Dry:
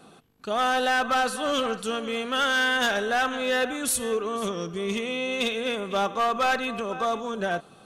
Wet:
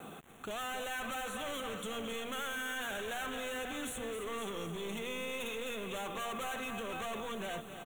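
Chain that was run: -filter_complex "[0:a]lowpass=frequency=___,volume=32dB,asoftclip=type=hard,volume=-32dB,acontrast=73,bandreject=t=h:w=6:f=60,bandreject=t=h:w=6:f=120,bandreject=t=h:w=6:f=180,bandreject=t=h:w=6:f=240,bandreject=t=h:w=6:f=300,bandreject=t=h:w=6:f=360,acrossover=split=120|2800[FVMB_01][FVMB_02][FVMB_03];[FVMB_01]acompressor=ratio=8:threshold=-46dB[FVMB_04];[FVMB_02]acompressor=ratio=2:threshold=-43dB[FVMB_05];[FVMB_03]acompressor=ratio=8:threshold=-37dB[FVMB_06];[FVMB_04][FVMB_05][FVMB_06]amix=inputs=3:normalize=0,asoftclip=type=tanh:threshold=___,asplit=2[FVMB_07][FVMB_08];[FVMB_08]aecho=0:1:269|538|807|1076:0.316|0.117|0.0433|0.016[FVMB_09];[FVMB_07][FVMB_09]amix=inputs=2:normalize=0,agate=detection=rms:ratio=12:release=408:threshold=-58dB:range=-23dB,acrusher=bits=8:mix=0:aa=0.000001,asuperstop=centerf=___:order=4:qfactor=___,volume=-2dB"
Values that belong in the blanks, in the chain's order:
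6400, -31dB, 4900, 1.5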